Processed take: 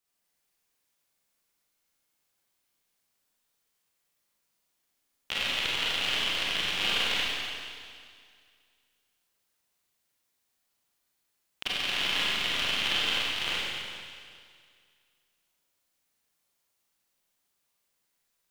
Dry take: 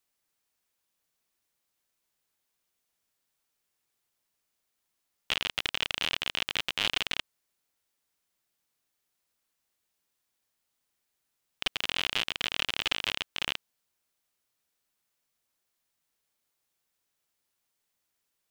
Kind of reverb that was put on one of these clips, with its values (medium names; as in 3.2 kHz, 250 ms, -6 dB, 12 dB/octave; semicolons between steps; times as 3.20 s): Schroeder reverb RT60 2.1 s, combs from 32 ms, DRR -7 dB; trim -4.5 dB